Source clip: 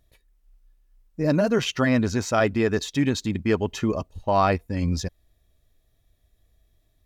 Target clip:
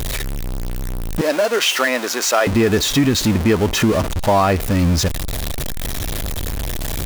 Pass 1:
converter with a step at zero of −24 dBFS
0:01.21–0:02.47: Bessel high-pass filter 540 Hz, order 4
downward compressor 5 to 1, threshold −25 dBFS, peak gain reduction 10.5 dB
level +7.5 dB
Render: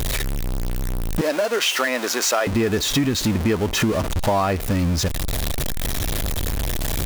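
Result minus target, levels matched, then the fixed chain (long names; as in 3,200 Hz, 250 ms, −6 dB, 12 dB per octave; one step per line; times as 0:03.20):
downward compressor: peak gain reduction +5 dB
converter with a step at zero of −24 dBFS
0:01.21–0:02.47: Bessel high-pass filter 540 Hz, order 4
downward compressor 5 to 1, threshold −18.5 dBFS, peak gain reduction 5 dB
level +7.5 dB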